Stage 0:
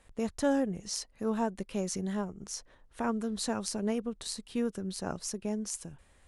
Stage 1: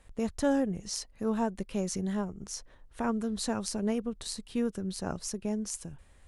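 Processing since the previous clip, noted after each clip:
low-shelf EQ 130 Hz +6.5 dB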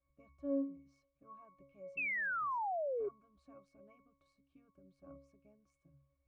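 low-shelf EQ 250 Hz −11 dB
resonances in every octave C#, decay 0.46 s
sound drawn into the spectrogram fall, 0:01.97–0:03.09, 390–2,700 Hz −37 dBFS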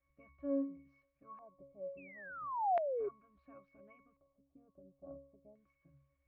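auto-filter low-pass square 0.36 Hz 690–2,100 Hz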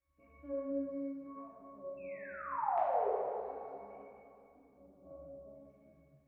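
dense smooth reverb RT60 2.7 s, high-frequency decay 0.75×, DRR −8.5 dB
level −6.5 dB

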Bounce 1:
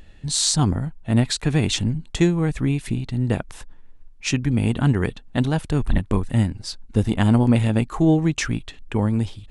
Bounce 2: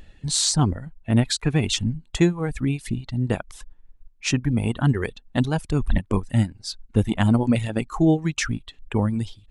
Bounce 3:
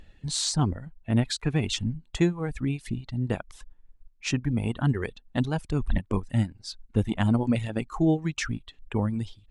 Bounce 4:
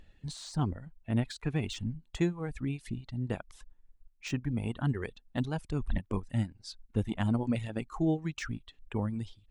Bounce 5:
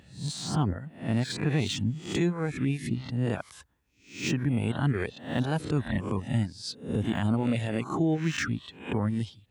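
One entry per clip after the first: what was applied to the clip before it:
reverb reduction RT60 1.7 s
high-shelf EQ 9,500 Hz −8.5 dB; level −4.5 dB
de-essing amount 75%; level −6 dB
peak hold with a rise ahead of every peak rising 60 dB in 0.44 s; high-pass filter 77 Hz 24 dB per octave; brickwall limiter −23.5 dBFS, peak gain reduction 7 dB; level +6 dB

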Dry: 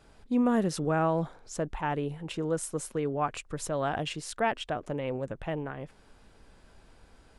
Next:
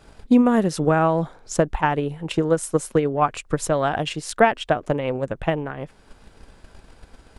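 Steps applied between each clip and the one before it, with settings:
transient designer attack +8 dB, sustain −2 dB
level +7 dB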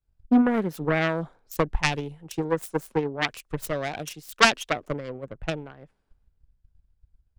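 phase distortion by the signal itself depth 0.53 ms
multiband upward and downward expander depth 100%
level −6.5 dB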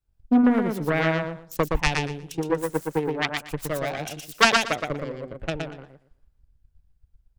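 repeating echo 118 ms, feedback 20%, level −4 dB

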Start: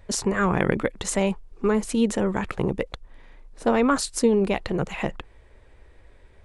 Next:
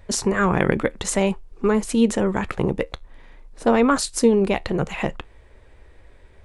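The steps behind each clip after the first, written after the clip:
tuned comb filter 77 Hz, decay 0.18 s, harmonics all, mix 30%
level +4.5 dB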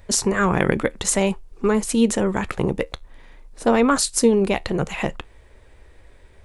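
high-shelf EQ 5,100 Hz +7 dB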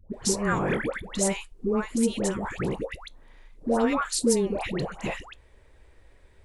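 all-pass dispersion highs, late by 141 ms, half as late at 930 Hz
level −6.5 dB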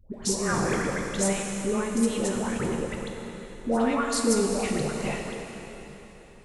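dense smooth reverb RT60 3.8 s, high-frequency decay 0.95×, DRR 1 dB
level −2 dB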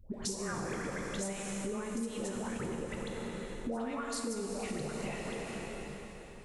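downward compressor 6 to 1, threshold −35 dBFS, peak gain reduction 16 dB

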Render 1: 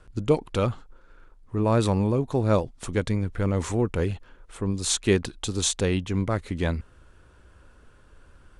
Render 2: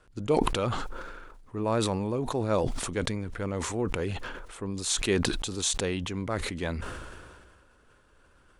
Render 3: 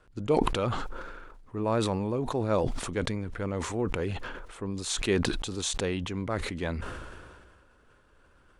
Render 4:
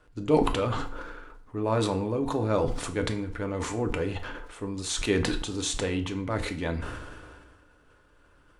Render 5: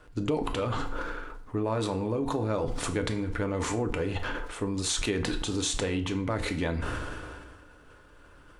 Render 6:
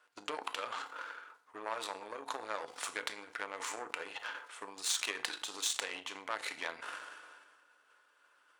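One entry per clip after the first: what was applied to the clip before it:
low-shelf EQ 190 Hz −9 dB; level that may fall only so fast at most 31 dB per second; level −3.5 dB
high-shelf EQ 5,100 Hz −6.5 dB
feedback delay network reverb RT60 0.49 s, low-frequency decay 0.95×, high-frequency decay 0.8×, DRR 5 dB
downward compressor 6 to 1, threshold −32 dBFS, peak gain reduction 15.5 dB; level +6 dB
harmonic generator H 7 −21 dB, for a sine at −12 dBFS; high-pass filter 920 Hz 12 dB per octave

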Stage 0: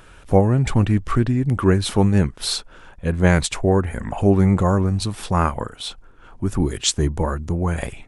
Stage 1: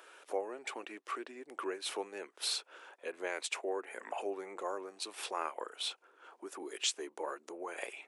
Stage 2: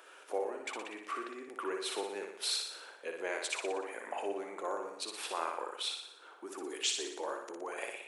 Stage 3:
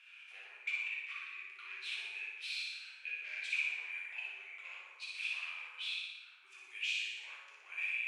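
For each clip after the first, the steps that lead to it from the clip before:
downward compressor 2.5 to 1, threshold −27 dBFS, peak gain reduction 12 dB; Butterworth high-pass 360 Hz 36 dB per octave; dynamic equaliser 2,500 Hz, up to +6 dB, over −53 dBFS, Q 2.9; level −7 dB
flutter between parallel walls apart 10.2 metres, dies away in 0.73 s
hard clipping −34.5 dBFS, distortion −10 dB; four-pole ladder band-pass 2,600 Hz, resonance 80%; dense smooth reverb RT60 1.2 s, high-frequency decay 0.7×, DRR −3.5 dB; level +4 dB

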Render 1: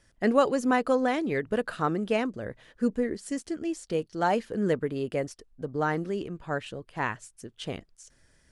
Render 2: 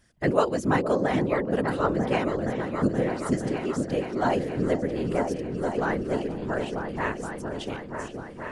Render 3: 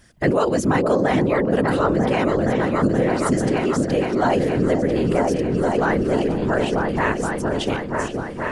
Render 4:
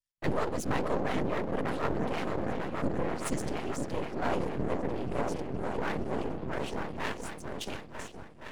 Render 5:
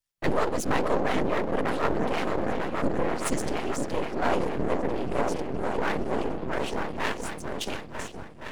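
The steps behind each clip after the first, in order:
random phases in short frames; echo whose low-pass opens from repeat to repeat 472 ms, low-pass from 400 Hz, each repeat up 2 octaves, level −3 dB
in parallel at −2.5 dB: compressor whose output falls as the input rises −30 dBFS; on the sum: boost into a limiter +11 dB; level −7 dB
half-wave rectification; multiband upward and downward expander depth 100%; level −8.5 dB
dynamic equaliser 110 Hz, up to −6 dB, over −46 dBFS, Q 0.74; level +6 dB

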